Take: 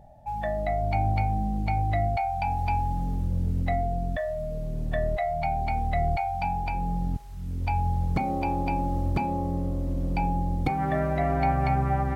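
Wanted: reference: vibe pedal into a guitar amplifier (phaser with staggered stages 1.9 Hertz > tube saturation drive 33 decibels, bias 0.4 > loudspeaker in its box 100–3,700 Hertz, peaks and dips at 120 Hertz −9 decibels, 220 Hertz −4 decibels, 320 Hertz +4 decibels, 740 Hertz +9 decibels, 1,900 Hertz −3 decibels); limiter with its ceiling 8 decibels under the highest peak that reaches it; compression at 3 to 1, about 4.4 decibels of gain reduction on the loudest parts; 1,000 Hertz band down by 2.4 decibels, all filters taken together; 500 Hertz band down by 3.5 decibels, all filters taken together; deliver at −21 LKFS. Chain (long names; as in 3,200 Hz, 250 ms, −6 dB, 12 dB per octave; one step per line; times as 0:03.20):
parametric band 500 Hz −8 dB
parametric band 1,000 Hz −9 dB
downward compressor 3 to 1, threshold −28 dBFS
brickwall limiter −27 dBFS
phaser with staggered stages 1.9 Hz
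tube saturation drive 33 dB, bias 0.4
loudspeaker in its box 100–3,700 Hz, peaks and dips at 120 Hz −9 dB, 220 Hz −4 dB, 320 Hz +4 dB, 740 Hz +9 dB, 1,900 Hz −3 dB
level +21 dB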